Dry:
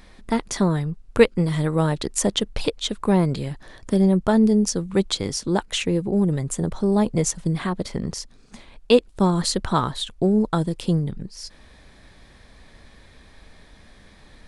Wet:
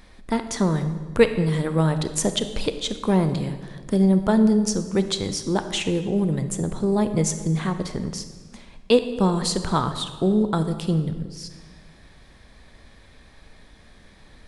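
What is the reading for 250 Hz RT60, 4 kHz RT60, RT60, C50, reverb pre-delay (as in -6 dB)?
1.7 s, 1.1 s, 1.5 s, 10.0 dB, 27 ms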